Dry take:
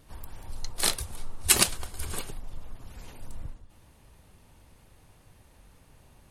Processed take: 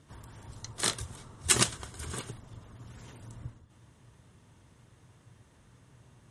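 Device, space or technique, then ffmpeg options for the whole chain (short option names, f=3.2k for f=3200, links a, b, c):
car door speaker: -af "highpass=87,equalizer=f=120:t=q:w=4:g=8,equalizer=f=540:t=q:w=4:g=-4,equalizer=f=790:t=q:w=4:g=-6,equalizer=f=2.5k:t=q:w=4:g=-6,equalizer=f=4.5k:t=q:w=4:g=-7,lowpass=f=8.7k:w=0.5412,lowpass=f=8.7k:w=1.3066"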